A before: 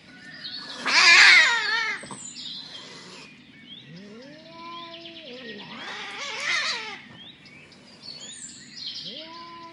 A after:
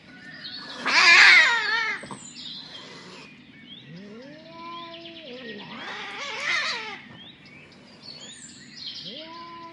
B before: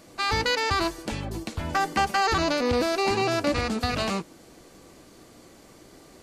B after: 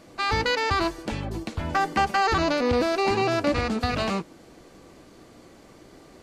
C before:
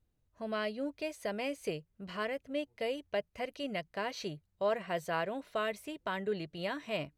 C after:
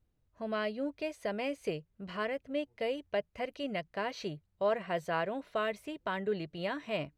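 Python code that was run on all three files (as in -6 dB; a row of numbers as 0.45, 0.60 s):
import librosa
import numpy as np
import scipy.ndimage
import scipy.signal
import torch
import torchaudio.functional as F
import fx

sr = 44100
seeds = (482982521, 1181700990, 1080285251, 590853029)

y = fx.high_shelf(x, sr, hz=5600.0, db=-9.5)
y = F.gain(torch.from_numpy(y), 1.5).numpy()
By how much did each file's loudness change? +0.5, +1.0, +1.0 LU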